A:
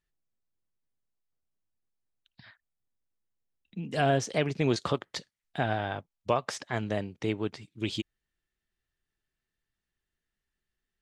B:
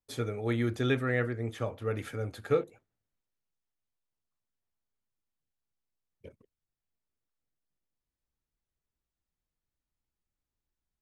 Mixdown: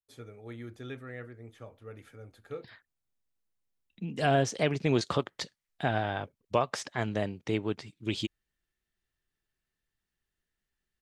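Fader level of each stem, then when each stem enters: 0.0 dB, -13.5 dB; 0.25 s, 0.00 s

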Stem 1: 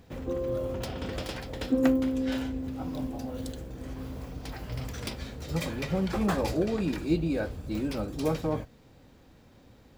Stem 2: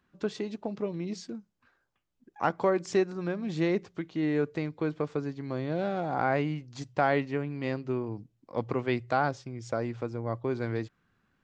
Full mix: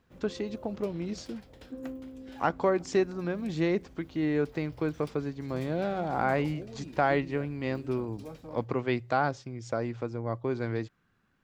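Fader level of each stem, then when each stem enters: -16.0 dB, 0.0 dB; 0.00 s, 0.00 s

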